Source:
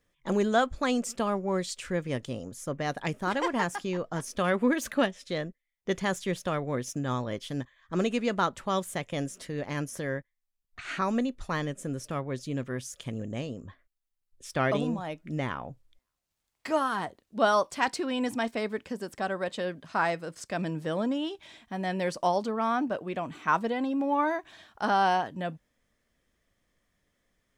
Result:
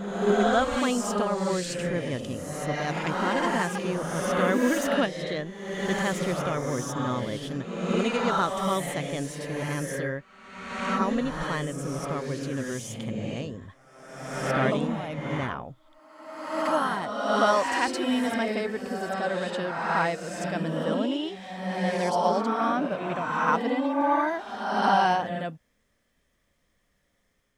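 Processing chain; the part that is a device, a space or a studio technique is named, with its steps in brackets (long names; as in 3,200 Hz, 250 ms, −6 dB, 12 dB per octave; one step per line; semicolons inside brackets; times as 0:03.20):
reverse reverb (reversed playback; convolution reverb RT60 1.3 s, pre-delay 46 ms, DRR −1 dB; reversed playback)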